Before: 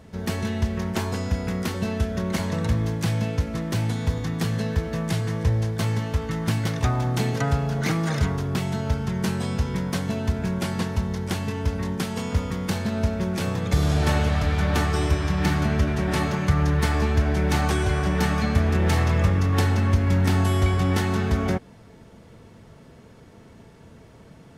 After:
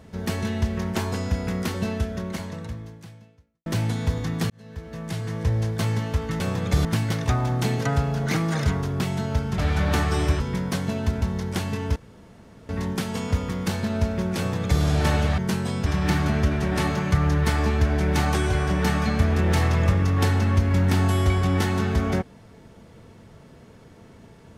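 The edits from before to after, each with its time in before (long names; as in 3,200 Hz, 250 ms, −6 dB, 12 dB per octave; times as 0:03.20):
0:01.85–0:03.66: fade out quadratic
0:04.50–0:05.66: fade in
0:09.13–0:09.61: swap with 0:14.40–0:15.22
0:10.43–0:10.97: remove
0:11.71: splice in room tone 0.73 s
0:13.40–0:13.85: duplicate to 0:06.40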